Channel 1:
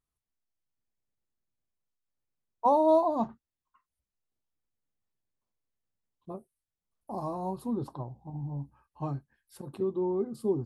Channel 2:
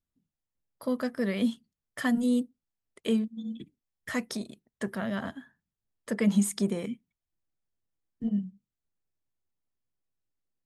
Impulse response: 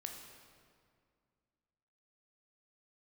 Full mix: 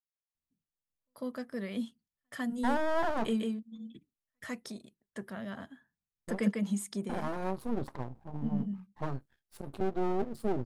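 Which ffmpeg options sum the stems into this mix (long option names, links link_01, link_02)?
-filter_complex "[0:a]agate=range=-33dB:threshold=-57dB:ratio=3:detection=peak,alimiter=limit=-22dB:level=0:latency=1:release=11,aeval=exprs='max(val(0),0)':channel_layout=same,volume=2.5dB,asplit=2[link_01][link_02];[1:a]adelay=200,volume=-5dB,asplit=2[link_03][link_04];[link_04]volume=-3.5dB[link_05];[link_02]apad=whole_len=478832[link_06];[link_03][link_06]sidechaingate=range=-55dB:threshold=-52dB:ratio=16:detection=peak[link_07];[link_05]aecho=0:1:148:1[link_08];[link_01][link_07][link_08]amix=inputs=3:normalize=0"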